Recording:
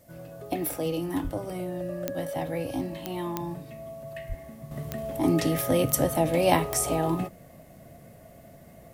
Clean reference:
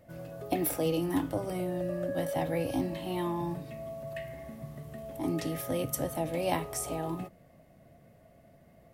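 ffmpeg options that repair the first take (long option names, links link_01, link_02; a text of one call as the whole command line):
ffmpeg -i in.wav -filter_complex "[0:a]adeclick=threshold=4,asplit=3[link_01][link_02][link_03];[link_01]afade=type=out:start_time=1.23:duration=0.02[link_04];[link_02]highpass=frequency=140:width=0.5412,highpass=frequency=140:width=1.3066,afade=type=in:start_time=1.23:duration=0.02,afade=type=out:start_time=1.35:duration=0.02[link_05];[link_03]afade=type=in:start_time=1.35:duration=0.02[link_06];[link_04][link_05][link_06]amix=inputs=3:normalize=0,asplit=3[link_07][link_08][link_09];[link_07]afade=type=out:start_time=4.28:duration=0.02[link_10];[link_08]highpass=frequency=140:width=0.5412,highpass=frequency=140:width=1.3066,afade=type=in:start_time=4.28:duration=0.02,afade=type=out:start_time=4.4:duration=0.02[link_11];[link_09]afade=type=in:start_time=4.4:duration=0.02[link_12];[link_10][link_11][link_12]amix=inputs=3:normalize=0,agate=range=-21dB:threshold=-42dB,asetnsamples=nb_out_samples=441:pad=0,asendcmd='4.71 volume volume -8.5dB',volume=0dB" out.wav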